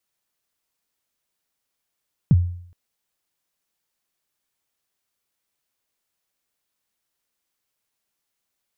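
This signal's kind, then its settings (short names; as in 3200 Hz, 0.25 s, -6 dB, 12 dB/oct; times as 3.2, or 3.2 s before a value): kick drum length 0.42 s, from 190 Hz, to 88 Hz, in 37 ms, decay 0.61 s, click off, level -8 dB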